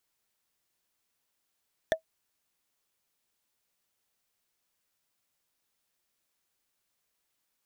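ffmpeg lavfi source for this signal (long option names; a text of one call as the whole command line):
ffmpeg -f lavfi -i "aevalsrc='0.141*pow(10,-3*t/0.1)*sin(2*PI*643*t)+0.0891*pow(10,-3*t/0.03)*sin(2*PI*1772.8*t)+0.0562*pow(10,-3*t/0.013)*sin(2*PI*3474.8*t)+0.0355*pow(10,-3*t/0.007)*sin(2*PI*5743.9*t)+0.0224*pow(10,-3*t/0.004)*sin(2*PI*8577.6*t)':duration=0.45:sample_rate=44100" out.wav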